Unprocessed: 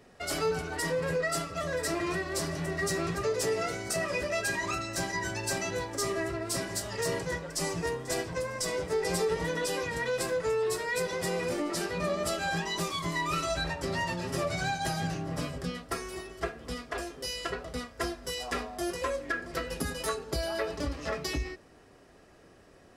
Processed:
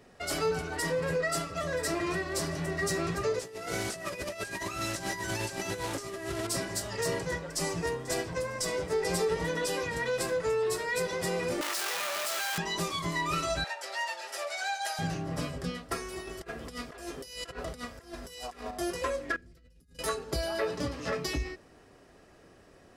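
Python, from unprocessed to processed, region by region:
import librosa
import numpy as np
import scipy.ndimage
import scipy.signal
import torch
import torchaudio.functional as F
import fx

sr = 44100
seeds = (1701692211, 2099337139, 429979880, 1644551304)

y = fx.chain(x, sr, fx.delta_mod(bps=64000, step_db=-33.5),
    fx.over_compress(threshold_db=-35.0, ratio=-0.5), at=(3.39, 6.47))
y = fx.chain(y, sr, fx.clip_1bit(),
    fx.highpass(hz=810.0, slope=12),
    fx.env_flatten(amount_pct=70), at=(11.61, 12.58))
y = fx.chain(y, sr, fx.highpass(hz=640.0, slope=24),
    fx.notch(hz=1100.0, q=5.5), at=(13.64, 14.99))
y = fx.chain(y, sr, fx.high_shelf(hz=8700.0, db=6.5),
    fx.over_compress(threshold_db=-40.0, ratio=-0.5), at=(16.27, 18.71))
y = fx.chain(y, sr, fx.tone_stack(knobs='10-0-1'),
    fx.over_compress(threshold_db=-58.0, ratio=-1.0), at=(19.36, 19.99))
y = fx.chain(y, sr, fx.highpass(hz=95.0, slope=24),
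    fx.low_shelf(hz=140.0, db=5.5),
    fx.doubler(ms=16.0, db=-6.0), at=(20.61, 21.26))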